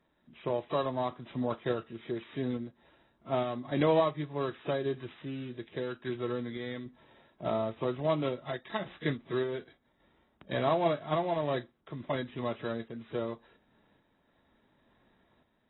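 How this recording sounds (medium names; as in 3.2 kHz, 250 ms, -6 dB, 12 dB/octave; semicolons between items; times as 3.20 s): a buzz of ramps at a fixed pitch in blocks of 8 samples; random-step tremolo; AAC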